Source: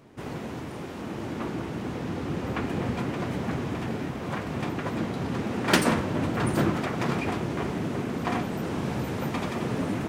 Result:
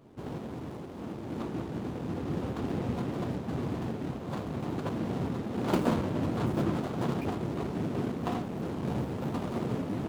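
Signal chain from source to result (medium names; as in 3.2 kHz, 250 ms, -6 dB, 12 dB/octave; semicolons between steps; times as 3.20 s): median filter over 25 samples; random flutter of the level, depth 55%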